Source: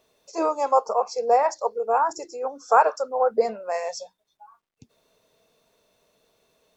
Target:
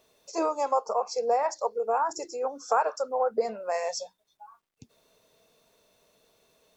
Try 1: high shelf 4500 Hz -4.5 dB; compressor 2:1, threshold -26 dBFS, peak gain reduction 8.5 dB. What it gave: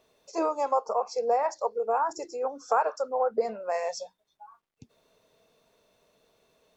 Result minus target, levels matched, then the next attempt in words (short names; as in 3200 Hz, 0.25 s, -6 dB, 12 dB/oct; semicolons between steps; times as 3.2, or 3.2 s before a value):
8000 Hz band -5.0 dB
high shelf 4500 Hz +3 dB; compressor 2:1, threshold -26 dBFS, peak gain reduction 8.5 dB